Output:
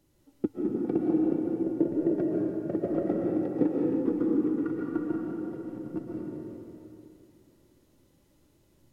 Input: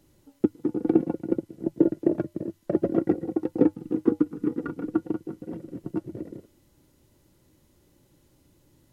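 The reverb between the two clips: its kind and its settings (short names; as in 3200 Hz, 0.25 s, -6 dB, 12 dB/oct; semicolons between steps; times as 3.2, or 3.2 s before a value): digital reverb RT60 2.8 s, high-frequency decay 0.75×, pre-delay 95 ms, DRR -3 dB; gain -7 dB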